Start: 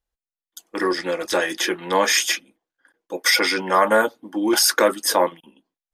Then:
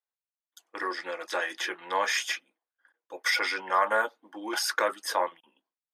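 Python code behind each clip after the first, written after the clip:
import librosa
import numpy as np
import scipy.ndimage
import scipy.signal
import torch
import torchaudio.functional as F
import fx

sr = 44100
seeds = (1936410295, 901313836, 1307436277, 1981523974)

y = scipy.signal.sosfilt(scipy.signal.butter(2, 1100.0, 'highpass', fs=sr, output='sos'), x)
y = fx.tilt_eq(y, sr, slope=-4.0)
y = y * 10.0 ** (-2.5 / 20.0)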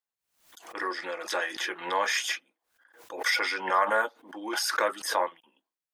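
y = fx.pre_swell(x, sr, db_per_s=110.0)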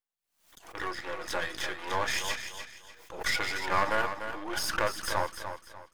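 y = np.where(x < 0.0, 10.0 ** (-12.0 / 20.0) * x, x)
y = fx.echo_feedback(y, sr, ms=296, feedback_pct=32, wet_db=-9)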